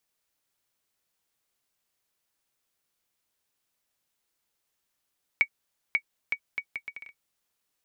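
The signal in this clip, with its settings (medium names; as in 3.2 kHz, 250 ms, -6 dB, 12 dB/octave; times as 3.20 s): bouncing ball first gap 0.54 s, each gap 0.69, 2.25 kHz, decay 72 ms -10.5 dBFS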